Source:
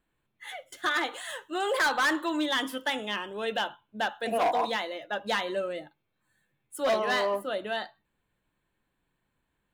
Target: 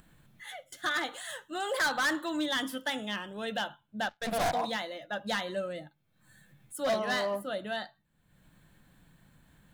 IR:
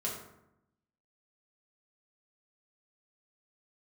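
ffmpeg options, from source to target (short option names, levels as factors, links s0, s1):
-filter_complex "[0:a]asplit=3[s0][s1][s2];[s0]afade=t=out:st=4.08:d=0.02[s3];[s1]aeval=exprs='0.0944*(cos(1*acos(clip(val(0)/0.0944,-1,1)))-cos(1*PI/2))+0.0299*(cos(2*acos(clip(val(0)/0.0944,-1,1)))-cos(2*PI/2))+0.0188*(cos(4*acos(clip(val(0)/0.0944,-1,1)))-cos(4*PI/2))+0.00335*(cos(5*acos(clip(val(0)/0.0944,-1,1)))-cos(5*PI/2))+0.015*(cos(7*acos(clip(val(0)/0.0944,-1,1)))-cos(7*PI/2))':c=same,afade=t=in:st=4.08:d=0.02,afade=t=out:st=4.53:d=0.02[s4];[s2]afade=t=in:st=4.53:d=0.02[s5];[s3][s4][s5]amix=inputs=3:normalize=0,equalizer=f=160:t=o:w=0.67:g=7,equalizer=f=400:t=o:w=0.67:g=-8,equalizer=f=1000:t=o:w=0.67:g=-6,equalizer=f=2500:t=o:w=0.67:g=-6,acompressor=mode=upward:threshold=0.00562:ratio=2.5"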